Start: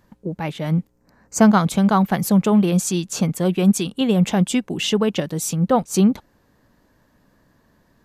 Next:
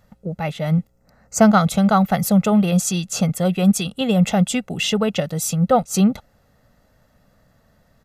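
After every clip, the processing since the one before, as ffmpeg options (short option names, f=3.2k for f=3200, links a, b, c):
-af "aecho=1:1:1.5:0.65"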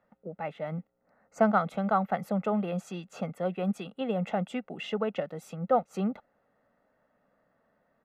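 -filter_complex "[0:a]acrossover=split=220 2400:gain=0.0891 1 0.0708[a][b][c];[a][b][c]amix=inputs=3:normalize=0,volume=-8dB"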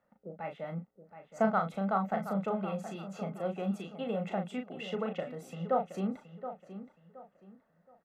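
-filter_complex "[0:a]asplit=2[a][b];[b]adelay=36,volume=-6dB[c];[a][c]amix=inputs=2:normalize=0,asplit=2[d][e];[e]adelay=722,lowpass=f=3.4k:p=1,volume=-11.5dB,asplit=2[f][g];[g]adelay=722,lowpass=f=3.4k:p=1,volume=0.3,asplit=2[h][i];[i]adelay=722,lowpass=f=3.4k:p=1,volume=0.3[j];[d][f][h][j]amix=inputs=4:normalize=0,volume=-5dB"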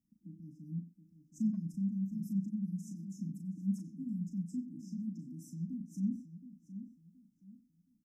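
-filter_complex "[0:a]afftfilt=real='re*(1-between(b*sr/4096,330,4900))':imag='im*(1-between(b*sr/4096,330,4900))':win_size=4096:overlap=0.75,asplit=2[a][b];[b]adelay=90,highpass=300,lowpass=3.4k,asoftclip=type=hard:threshold=-32.5dB,volume=-7dB[c];[a][c]amix=inputs=2:normalize=0"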